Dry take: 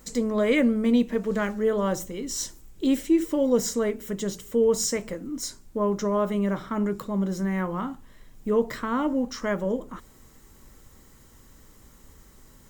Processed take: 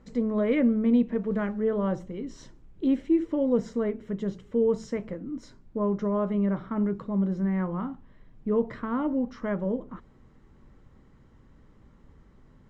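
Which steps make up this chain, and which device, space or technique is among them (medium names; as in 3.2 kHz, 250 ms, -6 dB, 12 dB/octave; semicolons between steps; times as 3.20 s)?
phone in a pocket (low-pass 3.3 kHz 12 dB/octave; peaking EQ 150 Hz +5 dB 1.6 oct; treble shelf 2.2 kHz -8.5 dB); trim -3.5 dB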